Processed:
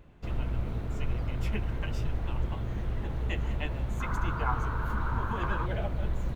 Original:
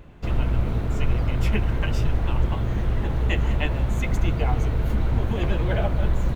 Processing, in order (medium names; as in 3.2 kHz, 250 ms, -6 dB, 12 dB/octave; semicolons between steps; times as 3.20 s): 4.00–5.66 s: high-order bell 1.2 kHz +15.5 dB 1 oct; trim -9 dB